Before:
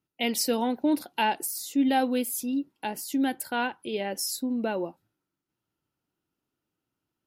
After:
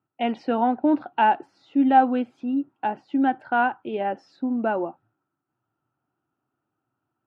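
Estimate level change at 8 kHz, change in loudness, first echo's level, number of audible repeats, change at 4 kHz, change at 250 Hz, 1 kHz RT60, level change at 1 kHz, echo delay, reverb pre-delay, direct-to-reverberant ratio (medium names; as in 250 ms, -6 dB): under -35 dB, +4.5 dB, no echo, no echo, -8.5 dB, +4.0 dB, no reverb, +9.0 dB, no echo, no reverb, no reverb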